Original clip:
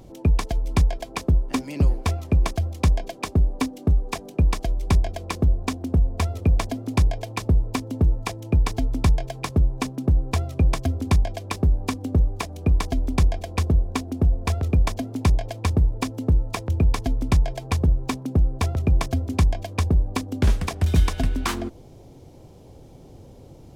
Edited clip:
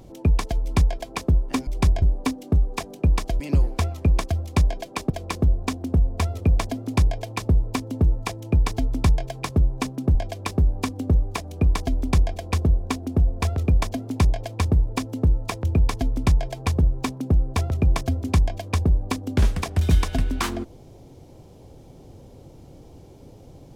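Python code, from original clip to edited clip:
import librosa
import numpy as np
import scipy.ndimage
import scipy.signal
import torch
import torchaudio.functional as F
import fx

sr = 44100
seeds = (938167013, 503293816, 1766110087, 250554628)

y = fx.edit(x, sr, fx.swap(start_s=1.67, length_s=1.7, other_s=4.75, other_length_s=0.35),
    fx.cut(start_s=10.15, length_s=1.05), tone=tone)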